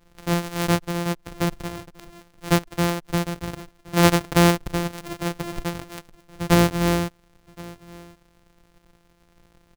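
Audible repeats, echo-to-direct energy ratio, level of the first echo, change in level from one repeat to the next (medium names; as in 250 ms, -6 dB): 1, -22.0 dB, -22.0 dB, no regular repeats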